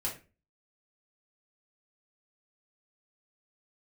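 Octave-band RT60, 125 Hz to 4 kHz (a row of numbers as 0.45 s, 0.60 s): 0.50 s, 0.45 s, 0.35 s, 0.30 s, 0.30 s, 0.25 s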